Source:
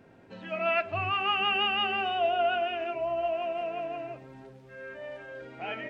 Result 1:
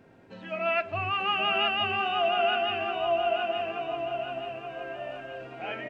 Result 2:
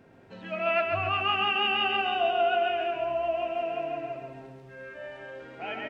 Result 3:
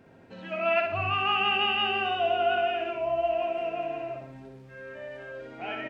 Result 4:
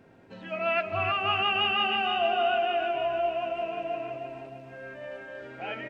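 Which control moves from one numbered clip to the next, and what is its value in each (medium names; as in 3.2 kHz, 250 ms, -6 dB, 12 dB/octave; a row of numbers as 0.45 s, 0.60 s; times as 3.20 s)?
feedback delay, time: 875 ms, 135 ms, 60 ms, 309 ms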